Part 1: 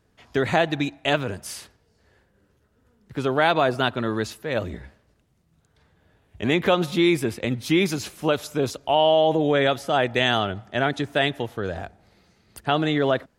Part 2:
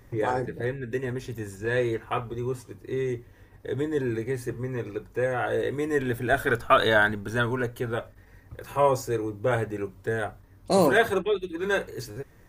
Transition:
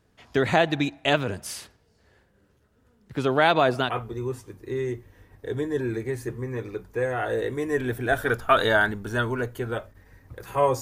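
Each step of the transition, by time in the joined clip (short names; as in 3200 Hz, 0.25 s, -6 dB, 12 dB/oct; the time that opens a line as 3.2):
part 1
3.87 switch to part 2 from 2.08 s, crossfade 0.18 s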